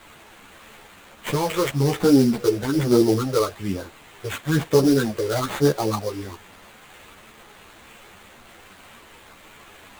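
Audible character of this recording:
a quantiser's noise floor 8 bits, dither triangular
phaser sweep stages 8, 1.1 Hz, lowest notch 220–2,500 Hz
aliases and images of a low sample rate 5,300 Hz, jitter 20%
a shimmering, thickened sound

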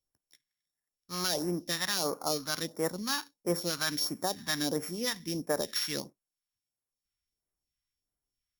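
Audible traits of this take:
a buzz of ramps at a fixed pitch in blocks of 8 samples
phaser sweep stages 2, 1.5 Hz, lowest notch 450–3,400 Hz

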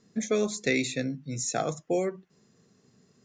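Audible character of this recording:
background noise floor −67 dBFS
spectral slope −4.0 dB per octave

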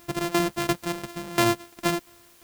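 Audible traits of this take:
a buzz of ramps at a fixed pitch in blocks of 128 samples
tremolo saw down 2.9 Hz, depth 85%
a quantiser's noise floor 10 bits, dither triangular

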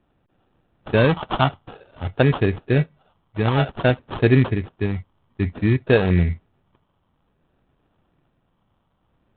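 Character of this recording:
phaser sweep stages 8, 0.54 Hz, lowest notch 490–1,700 Hz
aliases and images of a low sample rate 2,100 Hz, jitter 0%
IMA ADPCM

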